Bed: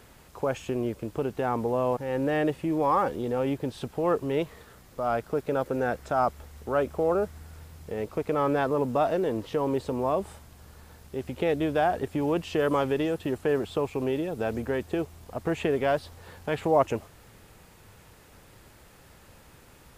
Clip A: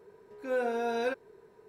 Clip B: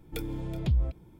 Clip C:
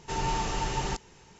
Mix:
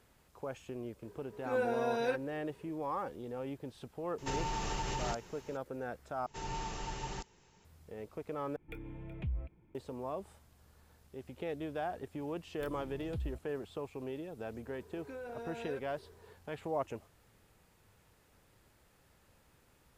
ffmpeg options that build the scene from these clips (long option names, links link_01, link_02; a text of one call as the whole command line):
ffmpeg -i bed.wav -i cue0.wav -i cue1.wav -i cue2.wav -filter_complex "[1:a]asplit=2[link_01][link_02];[3:a]asplit=2[link_03][link_04];[2:a]asplit=2[link_05][link_06];[0:a]volume=-13.5dB[link_07];[link_03]acompressor=threshold=-31dB:ratio=6:attack=3.2:release=140:knee=1:detection=peak[link_08];[link_05]highshelf=frequency=3400:width_type=q:width=3:gain=-12[link_09];[link_02]acompressor=threshold=-39dB:ratio=6:attack=3.2:release=140:knee=1:detection=peak[link_10];[link_07]asplit=3[link_11][link_12][link_13];[link_11]atrim=end=6.264[link_14];[link_04]atrim=end=1.39,asetpts=PTS-STARTPTS,volume=-10.5dB[link_15];[link_12]atrim=start=7.646:end=8.564[link_16];[link_09]atrim=end=1.19,asetpts=PTS-STARTPTS,volume=-11.5dB[link_17];[link_13]atrim=start=9.746[link_18];[link_01]atrim=end=1.68,asetpts=PTS-STARTPTS,volume=-2.5dB,afade=type=in:duration=0.004:curve=hsin,afade=type=out:start_time=1.676:duration=0.004:curve=hsin,adelay=1020[link_19];[link_08]atrim=end=1.39,asetpts=PTS-STARTPTS,volume=-1dB,afade=type=in:duration=0.004:curve=hsin,afade=type=out:start_time=1.386:duration=0.004:curve=hsin,adelay=4180[link_20];[link_06]atrim=end=1.19,asetpts=PTS-STARTPTS,volume=-14dB,afade=type=in:duration=0.004:curve=hsin,afade=type=out:start_time=1.186:duration=0.004:curve=hsin,adelay=12470[link_21];[link_10]atrim=end=1.68,asetpts=PTS-STARTPTS,volume=-3dB,afade=type=in:duration=0.004:curve=hsin,afade=type=out:start_time=1.676:duration=0.004:curve=hsin,adelay=14650[link_22];[link_14][link_15]acrossfade=duration=0.004:curve1=hsin:curve2=hsin[link_23];[link_23][link_16]acrossfade=duration=0.004:curve1=hsin:curve2=hsin[link_24];[link_24][link_17]acrossfade=duration=0.004:curve1=hsin:curve2=hsin[link_25];[link_25][link_18]acrossfade=duration=0.004:curve1=hsin:curve2=hsin[link_26];[link_26][link_19][link_20][link_21][link_22]amix=inputs=5:normalize=0" out.wav